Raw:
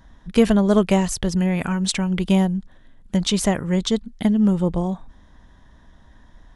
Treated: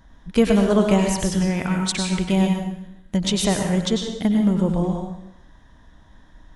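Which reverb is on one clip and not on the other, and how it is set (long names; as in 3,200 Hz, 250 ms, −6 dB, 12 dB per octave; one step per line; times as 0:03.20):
dense smooth reverb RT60 0.75 s, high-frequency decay 1×, pre-delay 85 ms, DRR 2 dB
level −1.5 dB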